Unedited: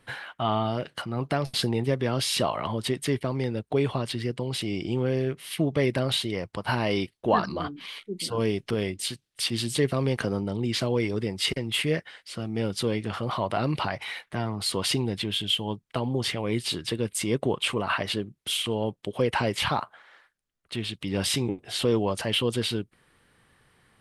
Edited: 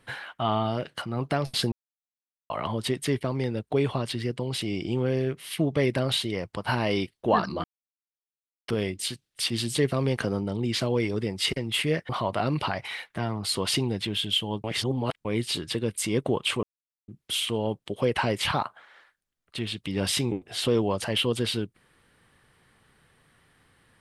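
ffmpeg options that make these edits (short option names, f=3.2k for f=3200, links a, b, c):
-filter_complex "[0:a]asplit=10[a][b][c][d][e][f][g][h][i][j];[a]atrim=end=1.72,asetpts=PTS-STARTPTS,afade=t=out:st=1.716:d=0.004:c=hsin[k];[b]atrim=start=1.72:end=2.5,asetpts=PTS-STARTPTS,volume=0[l];[c]atrim=start=2.5:end=7.64,asetpts=PTS-STARTPTS,afade=t=in:d=0.004:c=hsin,afade=t=out:st=5.136:d=0.004:c=hsin[m];[d]atrim=start=7.64:end=8.68,asetpts=PTS-STARTPTS,volume=0[n];[e]atrim=start=8.68:end=12.092,asetpts=PTS-STARTPTS,afade=t=in:d=0.004:c=hsin[o];[f]atrim=start=13.258:end=15.812[p];[g]atrim=start=15.808:end=16.422,asetpts=PTS-STARTPTS,areverse[q];[h]atrim=start=16.418:end=17.8,asetpts=PTS-STARTPTS,afade=t=out:st=1.378:d=0.004:c=hsin[r];[i]atrim=start=17.8:end=18.25,asetpts=PTS-STARTPTS,volume=0[s];[j]atrim=start=18.25,asetpts=PTS-STARTPTS,afade=t=in:d=0.004:c=hsin[t];[k][l][m][n][o]concat=n=5:v=0:a=1[u];[u][p]acrossfade=d=0.004:c1=hsin:c2=hsin[v];[v][q]acrossfade=d=0.004:c1=hsin:c2=hsin[w];[r][s][t]concat=n=3:v=0:a=1[x];[w][x]acrossfade=d=0.004:c1=hsin:c2=hsin"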